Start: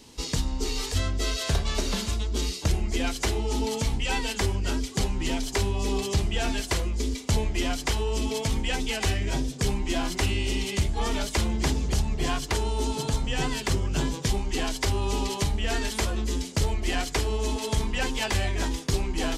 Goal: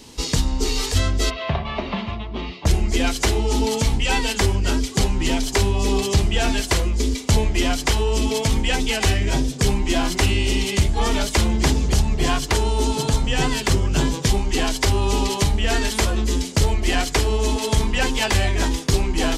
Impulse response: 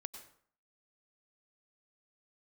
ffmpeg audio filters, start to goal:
-filter_complex "[0:a]asplit=3[s0][s1][s2];[s0]afade=t=out:st=1.29:d=0.02[s3];[s1]highpass=100,equalizer=f=290:t=q:w=4:g=-7,equalizer=f=450:t=q:w=4:g=-9,equalizer=f=700:t=q:w=4:g=4,equalizer=f=1100:t=q:w=4:g=4,equalizer=f=1500:t=q:w=4:g=-9,lowpass=f=2800:w=0.5412,lowpass=f=2800:w=1.3066,afade=t=in:st=1.29:d=0.02,afade=t=out:st=2.65:d=0.02[s4];[s2]afade=t=in:st=2.65:d=0.02[s5];[s3][s4][s5]amix=inputs=3:normalize=0,volume=2.24"

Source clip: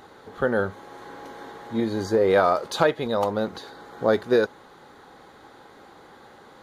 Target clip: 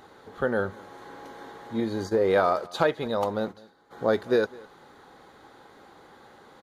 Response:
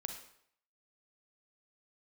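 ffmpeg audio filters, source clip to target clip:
-filter_complex "[0:a]asplit=3[s0][s1][s2];[s0]afade=t=out:st=1.9:d=0.02[s3];[s1]agate=range=0.178:threshold=0.0316:ratio=16:detection=peak,afade=t=in:st=1.9:d=0.02,afade=t=out:st=3.9:d=0.02[s4];[s2]afade=t=in:st=3.9:d=0.02[s5];[s3][s4][s5]amix=inputs=3:normalize=0,aecho=1:1:207:0.0708,volume=0.708"

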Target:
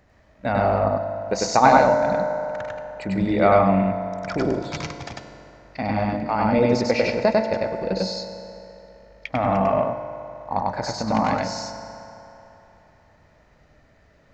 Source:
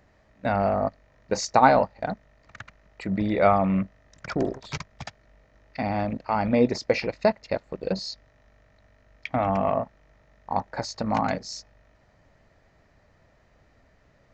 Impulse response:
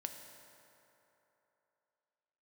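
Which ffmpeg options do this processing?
-filter_complex "[0:a]asplit=2[s0][s1];[1:a]atrim=start_sample=2205,adelay=98[s2];[s1][s2]afir=irnorm=-1:irlink=0,volume=1.33[s3];[s0][s3]amix=inputs=2:normalize=0,volume=1.12"

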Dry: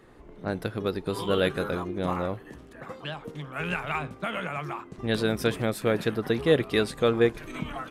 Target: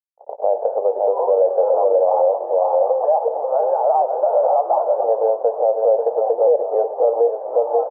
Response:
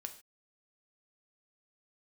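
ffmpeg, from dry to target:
-filter_complex "[0:a]agate=range=0.0447:threshold=0.00562:ratio=16:detection=peak,asplit=2[s0][s1];[1:a]atrim=start_sample=2205[s2];[s1][s2]afir=irnorm=-1:irlink=0,volume=1.06[s3];[s0][s3]amix=inputs=2:normalize=0,acrusher=bits=8:dc=4:mix=0:aa=0.000001,asplit=2[s4][s5];[s5]aecho=0:1:535:0.355[s6];[s4][s6]amix=inputs=2:normalize=0,acompressor=threshold=0.0178:ratio=3,asuperpass=centerf=650:order=8:qfactor=1.8,asplit=5[s7][s8][s9][s10][s11];[s8]adelay=208,afreqshift=69,volume=0.075[s12];[s9]adelay=416,afreqshift=138,volume=0.0437[s13];[s10]adelay=624,afreqshift=207,volume=0.0251[s14];[s11]adelay=832,afreqshift=276,volume=0.0146[s15];[s7][s12][s13][s14][s15]amix=inputs=5:normalize=0,alimiter=level_in=59.6:limit=0.891:release=50:level=0:latency=1,volume=0.447"

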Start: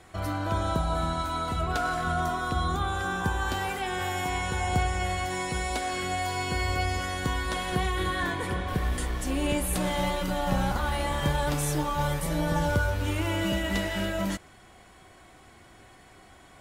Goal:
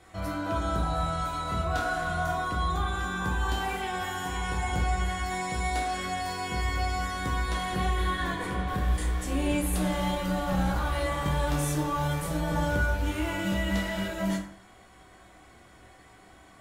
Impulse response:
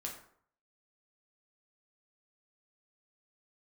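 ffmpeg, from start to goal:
-filter_complex "[0:a]asoftclip=type=tanh:threshold=0.141,asettb=1/sr,asplit=3[s0][s1][s2];[s0]atrim=end=0.804[s3];[s1]atrim=start=0.8:end=2.36,asetpts=PTS-STARTPTS,afade=t=in:d=0.004:c=qsin,afade=t=out:st=1.556:d=0.004:c=qsin,asplit=2[s4][s5];[s5]adelay=26,volume=0.562[s6];[s4][s6]amix=inputs=2:normalize=0,atrim=end_sample=68796[s7];[s2]atrim=start=2.356[s8];[s3][s7]acrossfade=d=0.004:c1=hsin:c2=qsin[s9];[s9][s8]acrossfade=d=0.004:c1=qsin:c2=hsin[s10];[1:a]atrim=start_sample=2205[s11];[s10][s11]afir=irnorm=-1:irlink=0"

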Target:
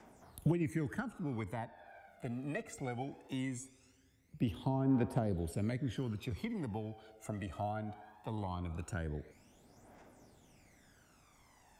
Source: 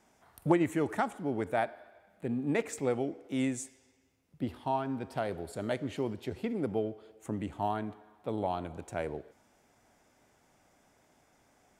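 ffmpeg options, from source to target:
-filter_complex "[0:a]acrossover=split=270|880[s0][s1][s2];[s0]acompressor=threshold=0.0126:ratio=4[s3];[s1]acompressor=threshold=0.00562:ratio=4[s4];[s2]acompressor=threshold=0.00282:ratio=4[s5];[s3][s4][s5]amix=inputs=3:normalize=0,aphaser=in_gain=1:out_gain=1:delay=1.6:decay=0.67:speed=0.2:type=triangular"

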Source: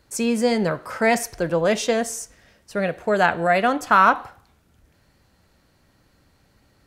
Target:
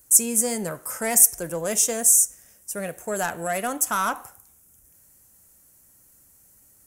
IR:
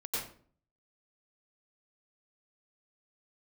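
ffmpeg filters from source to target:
-af "asoftclip=type=tanh:threshold=0.355,aexciter=amount=14.2:drive=7.6:freq=6400,volume=0.422"

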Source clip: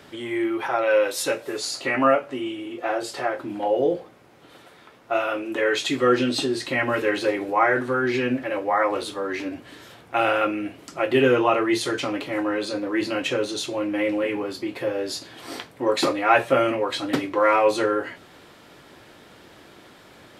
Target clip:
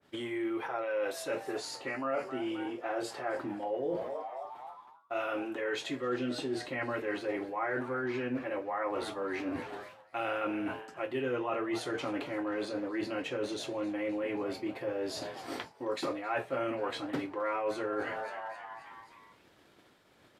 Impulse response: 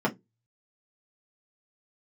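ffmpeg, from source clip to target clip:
-filter_complex "[0:a]agate=range=0.0224:threshold=0.0158:ratio=3:detection=peak,asplit=6[s0][s1][s2][s3][s4][s5];[s1]adelay=265,afreqshift=120,volume=0.112[s6];[s2]adelay=530,afreqshift=240,volume=0.0617[s7];[s3]adelay=795,afreqshift=360,volume=0.0339[s8];[s4]adelay=1060,afreqshift=480,volume=0.0186[s9];[s5]adelay=1325,afreqshift=600,volume=0.0102[s10];[s0][s6][s7][s8][s9][s10]amix=inputs=6:normalize=0,areverse,acompressor=threshold=0.0126:ratio=4,areverse,adynamicequalizer=threshold=0.00158:dfrequency=2600:dqfactor=0.7:tfrequency=2600:tqfactor=0.7:attack=5:release=100:ratio=0.375:range=3.5:mode=cutabove:tftype=highshelf,volume=1.5"

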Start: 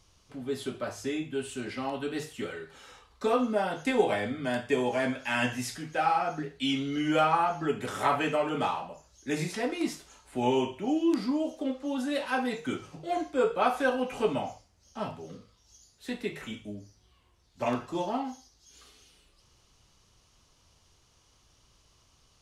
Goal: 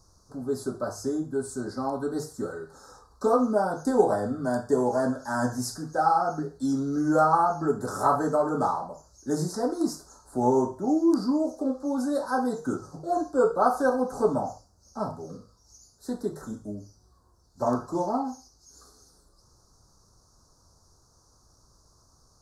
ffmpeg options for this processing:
-af "asuperstop=centerf=2600:order=8:qfactor=0.83,volume=1.58"

